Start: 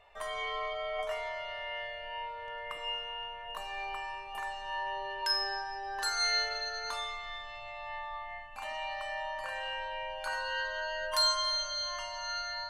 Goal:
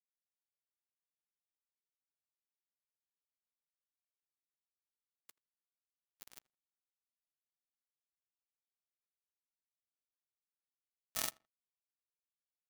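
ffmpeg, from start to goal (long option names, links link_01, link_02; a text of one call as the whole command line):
ffmpeg -i in.wav -filter_complex "[0:a]afreqshift=-190,asetrate=66075,aresample=44100,atempo=0.66742,acrusher=bits=2:mix=0:aa=0.5,asplit=2[link_01][link_02];[link_02]adelay=82,lowpass=frequency=2300:poles=1,volume=-24dB,asplit=2[link_03][link_04];[link_04]adelay=82,lowpass=frequency=2300:poles=1,volume=0.24[link_05];[link_03][link_05]amix=inputs=2:normalize=0[link_06];[link_01][link_06]amix=inputs=2:normalize=0,volume=14dB" out.wav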